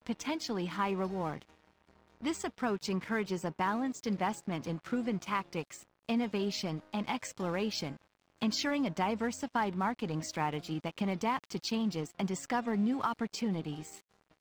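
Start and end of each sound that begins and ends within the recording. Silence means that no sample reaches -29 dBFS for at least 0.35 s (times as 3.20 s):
2.26–5.61 s
6.09–7.89 s
8.42–13.68 s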